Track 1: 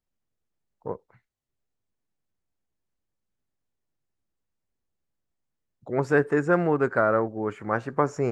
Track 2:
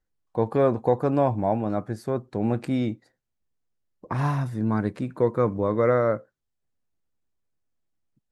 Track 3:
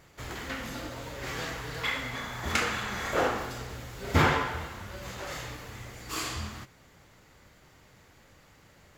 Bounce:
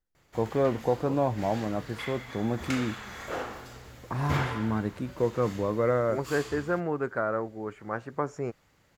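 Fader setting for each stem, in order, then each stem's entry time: −7.0, −4.5, −7.5 decibels; 0.20, 0.00, 0.15 seconds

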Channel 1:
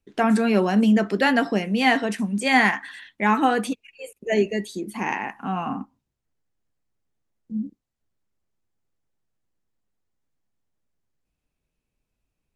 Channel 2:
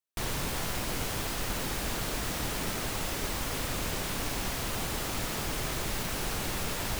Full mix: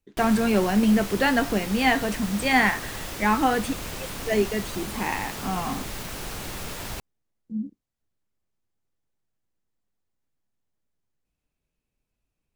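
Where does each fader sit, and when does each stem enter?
−2.0, −1.5 decibels; 0.00, 0.00 seconds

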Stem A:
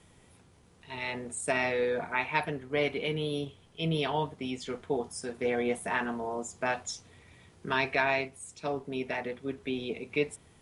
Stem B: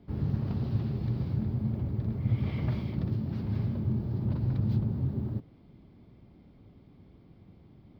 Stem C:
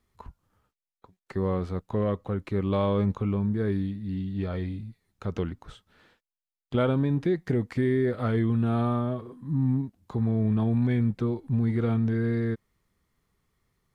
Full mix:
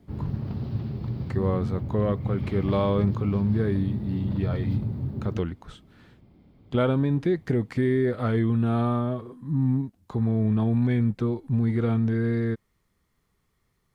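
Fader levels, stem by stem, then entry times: muted, 0.0 dB, +1.5 dB; muted, 0.00 s, 0.00 s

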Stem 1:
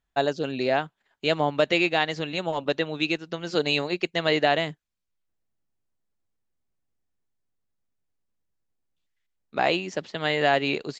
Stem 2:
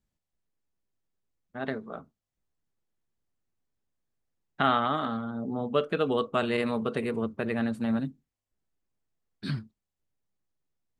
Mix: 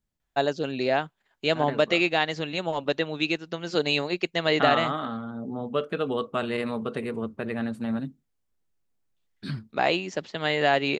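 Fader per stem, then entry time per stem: −0.5, −1.0 decibels; 0.20, 0.00 seconds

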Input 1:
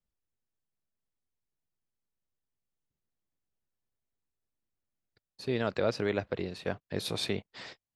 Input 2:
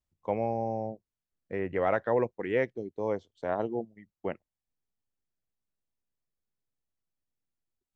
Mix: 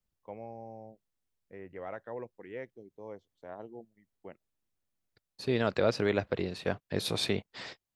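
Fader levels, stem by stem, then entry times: +2.0, −14.0 decibels; 0.00, 0.00 seconds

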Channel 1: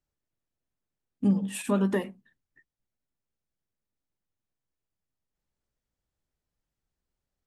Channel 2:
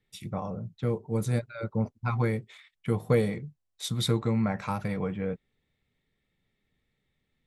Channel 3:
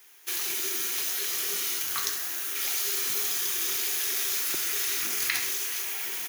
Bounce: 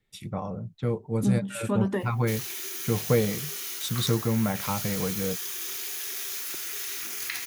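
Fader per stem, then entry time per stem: −1.5, +1.0, −5.5 decibels; 0.00, 0.00, 2.00 seconds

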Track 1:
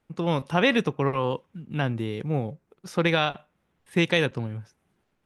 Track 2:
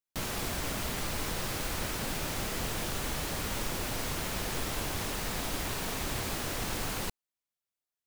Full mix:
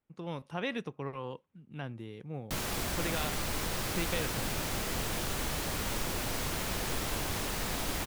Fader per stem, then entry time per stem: −14.0, 0.0 decibels; 0.00, 2.35 seconds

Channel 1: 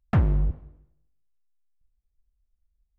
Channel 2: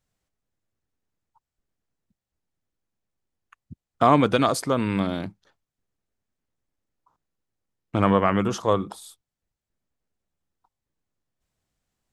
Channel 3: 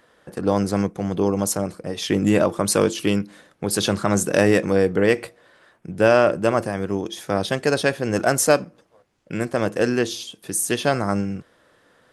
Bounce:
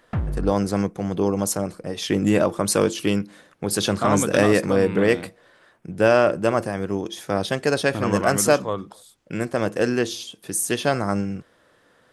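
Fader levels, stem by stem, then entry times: −4.5, −5.5, −1.0 decibels; 0.00, 0.00, 0.00 seconds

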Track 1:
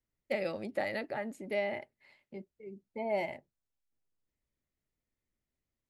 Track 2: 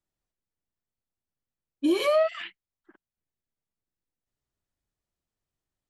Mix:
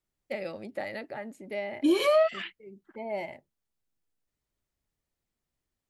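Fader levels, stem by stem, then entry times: −1.5, 0.0 decibels; 0.00, 0.00 seconds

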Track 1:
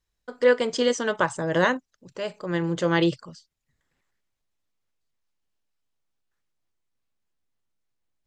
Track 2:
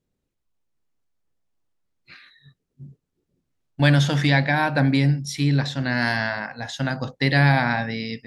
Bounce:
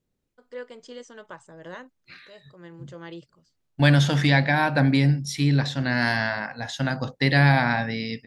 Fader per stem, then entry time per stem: −18.5, −0.5 decibels; 0.10, 0.00 seconds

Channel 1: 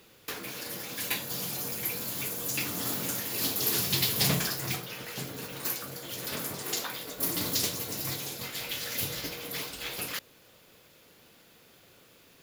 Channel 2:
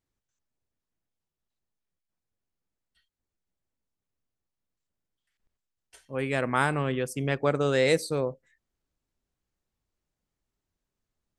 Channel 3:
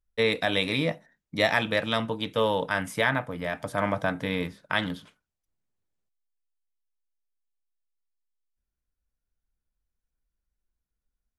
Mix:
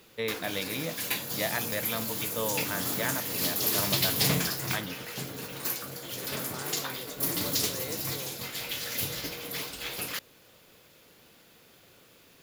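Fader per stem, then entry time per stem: +0.5, −18.0, −8.5 decibels; 0.00, 0.00, 0.00 seconds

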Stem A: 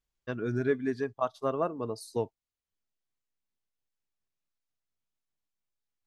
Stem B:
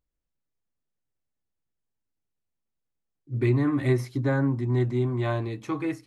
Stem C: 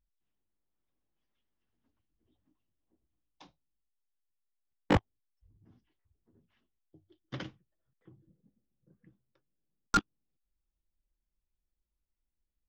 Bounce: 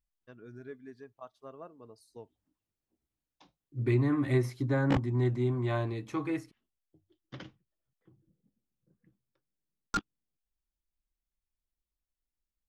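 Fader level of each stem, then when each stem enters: −17.5, −4.0, −5.0 decibels; 0.00, 0.45, 0.00 seconds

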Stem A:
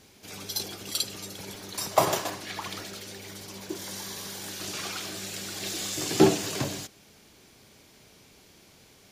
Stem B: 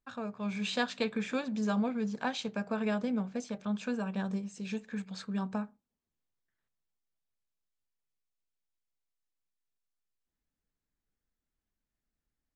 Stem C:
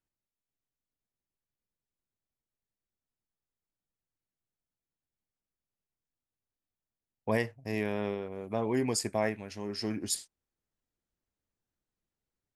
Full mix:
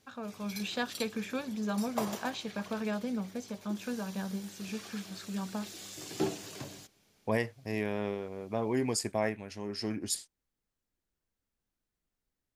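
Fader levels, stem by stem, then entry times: −13.0, −2.5, −1.0 decibels; 0.00, 0.00, 0.00 seconds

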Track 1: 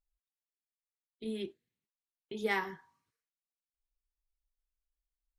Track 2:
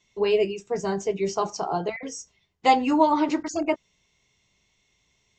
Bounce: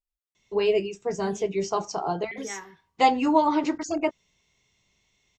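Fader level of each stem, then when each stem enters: −6.0, −1.0 decibels; 0.00, 0.35 seconds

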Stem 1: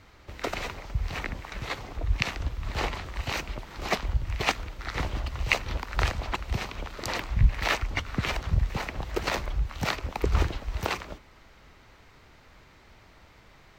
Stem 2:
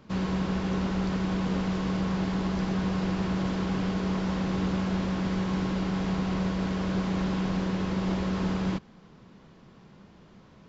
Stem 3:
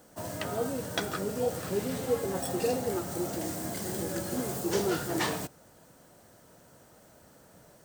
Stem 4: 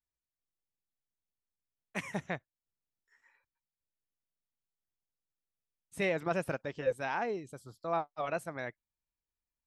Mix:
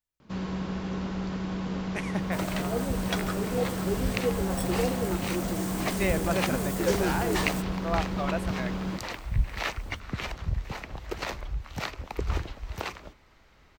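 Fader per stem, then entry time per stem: −5.0, −4.0, 0.0, +2.5 decibels; 1.95, 0.20, 2.15, 0.00 seconds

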